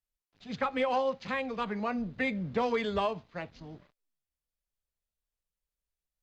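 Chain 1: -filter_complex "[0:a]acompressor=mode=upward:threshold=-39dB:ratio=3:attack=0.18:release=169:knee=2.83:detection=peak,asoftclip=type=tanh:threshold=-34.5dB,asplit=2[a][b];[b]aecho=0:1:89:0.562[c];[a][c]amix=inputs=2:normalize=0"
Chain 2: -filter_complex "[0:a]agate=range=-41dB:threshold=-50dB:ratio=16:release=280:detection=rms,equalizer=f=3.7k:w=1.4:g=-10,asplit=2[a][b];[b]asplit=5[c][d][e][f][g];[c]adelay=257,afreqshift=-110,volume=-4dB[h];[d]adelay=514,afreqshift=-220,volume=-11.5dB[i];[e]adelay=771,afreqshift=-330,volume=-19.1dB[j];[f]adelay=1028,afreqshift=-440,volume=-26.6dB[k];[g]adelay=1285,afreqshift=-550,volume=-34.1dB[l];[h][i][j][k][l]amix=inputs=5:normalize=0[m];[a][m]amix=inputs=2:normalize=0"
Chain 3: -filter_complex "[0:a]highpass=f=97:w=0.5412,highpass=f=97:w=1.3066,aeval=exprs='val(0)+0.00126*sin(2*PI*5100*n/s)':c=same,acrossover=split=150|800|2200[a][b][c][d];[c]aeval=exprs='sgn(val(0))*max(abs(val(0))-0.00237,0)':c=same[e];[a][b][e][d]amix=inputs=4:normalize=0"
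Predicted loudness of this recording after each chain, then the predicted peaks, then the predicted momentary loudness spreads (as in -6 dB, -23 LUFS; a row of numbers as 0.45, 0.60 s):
-38.0, -31.5, -33.0 LUFS; -30.5, -17.0, -18.0 dBFS; 12, 14, 17 LU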